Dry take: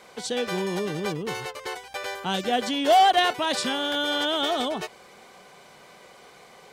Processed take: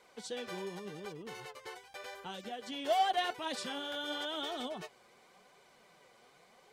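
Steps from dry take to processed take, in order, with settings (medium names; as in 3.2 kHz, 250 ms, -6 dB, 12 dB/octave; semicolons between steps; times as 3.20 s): 0.67–2.72 s: compression 6:1, threshold -27 dBFS, peak gain reduction 8 dB; flange 0.89 Hz, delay 1.9 ms, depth 7.2 ms, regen +45%; trim -9 dB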